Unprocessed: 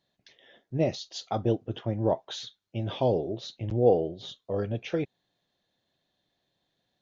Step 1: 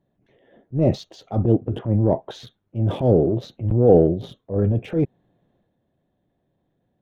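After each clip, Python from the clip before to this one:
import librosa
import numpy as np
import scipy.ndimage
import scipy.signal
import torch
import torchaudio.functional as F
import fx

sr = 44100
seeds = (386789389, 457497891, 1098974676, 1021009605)

y = fx.wiener(x, sr, points=9)
y = fx.transient(y, sr, attack_db=-9, sustain_db=6)
y = fx.tilt_shelf(y, sr, db=9.0, hz=810.0)
y = y * 10.0 ** (4.5 / 20.0)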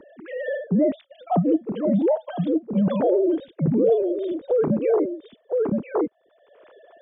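y = fx.sine_speech(x, sr)
y = y + 10.0 ** (-10.0 / 20.0) * np.pad(y, (int(1015 * sr / 1000.0), 0))[:len(y)]
y = fx.band_squash(y, sr, depth_pct=100)
y = y * 10.0 ** (-1.0 / 20.0)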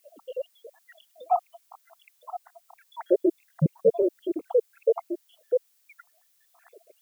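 y = fx.spec_dropout(x, sr, seeds[0], share_pct=81)
y = fx.dmg_noise_colour(y, sr, seeds[1], colour='blue', level_db=-68.0)
y = y * 10.0 ** (1.5 / 20.0)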